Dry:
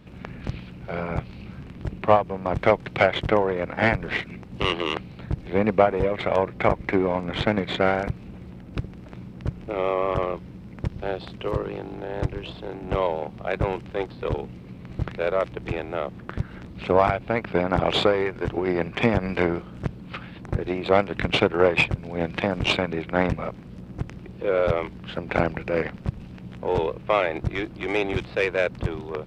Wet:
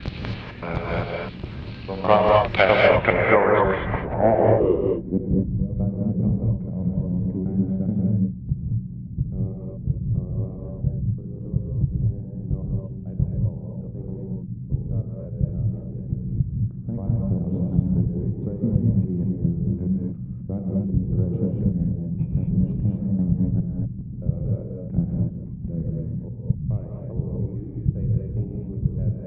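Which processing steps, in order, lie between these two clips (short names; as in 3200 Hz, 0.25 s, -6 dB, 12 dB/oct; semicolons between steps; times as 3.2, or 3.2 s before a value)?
slices in reverse order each 0.207 s, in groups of 3; low-pass sweep 4100 Hz -> 160 Hz, 2.53–5.57; non-linear reverb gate 0.27 s rising, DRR -1.5 dB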